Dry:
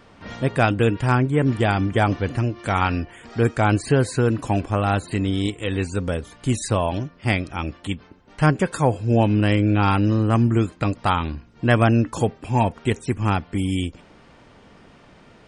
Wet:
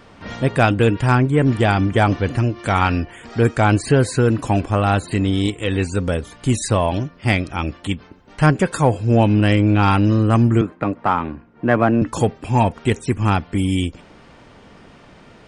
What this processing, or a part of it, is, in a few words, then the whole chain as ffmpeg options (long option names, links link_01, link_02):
parallel distortion: -filter_complex "[0:a]asettb=1/sr,asplit=3[link_01][link_02][link_03];[link_01]atrim=end=10.614[link_04];[link_02]atrim=start=10.61:end=12.02,asetpts=PTS-STARTPTS,afade=type=in:duration=0.004:curve=qsin,afade=type=out:start_time=1.406:duration=0.004:curve=qsin,acrossover=split=160 2200:gain=0.224 1 0.0708[link_05][link_06][link_07];[link_05][link_06][link_07]amix=inputs=3:normalize=0[link_08];[link_03]atrim=start=12.016[link_09];[link_04][link_08]acrossfade=duration=0.004:curve1=hsin:curve2=qsin[link_10];[link_10][link_09]acrossfade=duration=0.004:curve1=qsin:curve2=hsin,asplit=2[link_11][link_12];[link_12]asoftclip=type=hard:threshold=-18.5dB,volume=-11dB[link_13];[link_11][link_13]amix=inputs=2:normalize=0,volume=2dB"